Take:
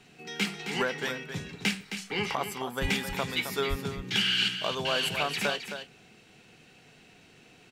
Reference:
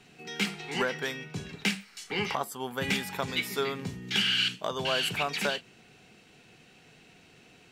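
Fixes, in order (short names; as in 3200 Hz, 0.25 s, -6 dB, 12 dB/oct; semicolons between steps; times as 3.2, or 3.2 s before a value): de-plosive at 2.81/3.69; inverse comb 0.265 s -9 dB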